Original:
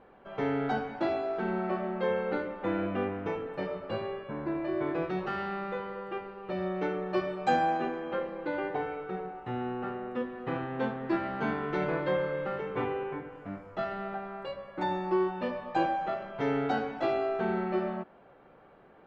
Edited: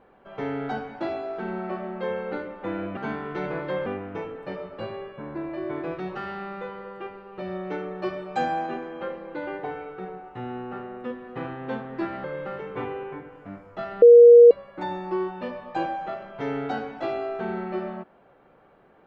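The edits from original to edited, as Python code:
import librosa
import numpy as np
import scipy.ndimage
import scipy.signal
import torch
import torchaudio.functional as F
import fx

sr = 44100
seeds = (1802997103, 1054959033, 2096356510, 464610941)

y = fx.edit(x, sr, fx.move(start_s=11.35, length_s=0.89, to_s=2.97),
    fx.bleep(start_s=14.02, length_s=0.49, hz=475.0, db=-6.5), tone=tone)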